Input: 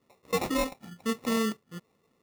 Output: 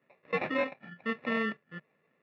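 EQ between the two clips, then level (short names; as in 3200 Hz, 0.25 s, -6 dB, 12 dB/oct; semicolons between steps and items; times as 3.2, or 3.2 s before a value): speaker cabinet 140–3300 Hz, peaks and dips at 150 Hz +6 dB, 600 Hz +8 dB, 1600 Hz +8 dB, 2400 Hz +9 dB; bell 1700 Hz +10 dB 0.28 oct; -5.5 dB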